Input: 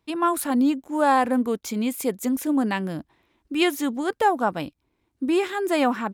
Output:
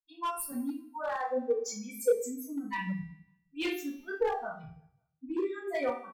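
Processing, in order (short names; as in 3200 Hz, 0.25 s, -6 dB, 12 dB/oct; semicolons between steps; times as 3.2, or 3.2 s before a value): per-bin expansion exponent 3; compressor 2.5:1, threshold -29 dBFS, peak gain reduction 7.5 dB; feedback echo 0.183 s, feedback 42%, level -20.5 dB; reverb removal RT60 2 s; 0.51–2.74 weighting filter A; vocal rider within 3 dB 0.5 s; reverb RT60 0.40 s, pre-delay 3 ms, DRR -11.5 dB; hard clip -15 dBFS, distortion -16 dB; bell 490 Hz +11 dB 0.3 oct; resonator 390 Hz, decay 0.83 s, mix 80%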